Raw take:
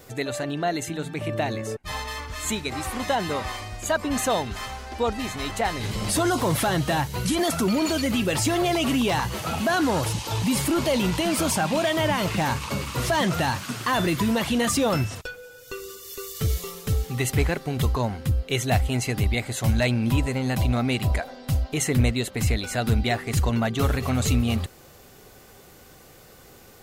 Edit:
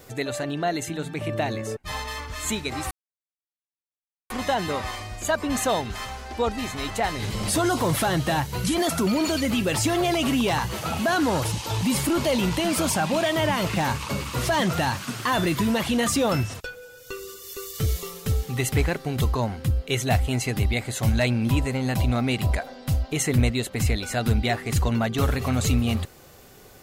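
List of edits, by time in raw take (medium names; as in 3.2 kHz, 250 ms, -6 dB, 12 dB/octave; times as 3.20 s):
2.91 s: insert silence 1.39 s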